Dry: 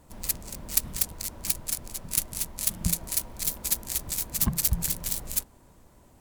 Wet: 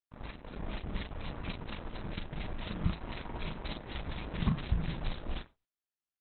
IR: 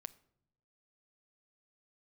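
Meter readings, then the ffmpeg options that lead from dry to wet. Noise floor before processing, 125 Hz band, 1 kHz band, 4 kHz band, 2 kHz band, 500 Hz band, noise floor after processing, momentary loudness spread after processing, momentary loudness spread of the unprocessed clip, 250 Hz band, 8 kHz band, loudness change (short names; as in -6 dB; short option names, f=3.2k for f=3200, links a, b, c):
-57 dBFS, -1.0 dB, +1.0 dB, -9.5 dB, -1.5 dB, +2.0 dB, under -85 dBFS, 10 LU, 6 LU, -0.5 dB, under -40 dB, -11.5 dB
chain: -filter_complex "[0:a]lowpass=f=2.2k:p=1,agate=range=-33dB:threshold=-44dB:ratio=3:detection=peak,alimiter=limit=-20.5dB:level=0:latency=1:release=225,dynaudnorm=f=230:g=5:m=6dB,aeval=exprs='sgn(val(0))*max(abs(val(0))-0.00106,0)':c=same,acrusher=bits=5:mix=0:aa=0.5,asplit=2[a][b];[b]adelay=38,volume=-5.5dB[c];[a][c]amix=inputs=2:normalize=0[d];[1:a]atrim=start_sample=2205,atrim=end_sample=3969[e];[d][e]afir=irnorm=-1:irlink=0,volume=3.5dB" -ar 48000 -c:a libopus -b:a 8k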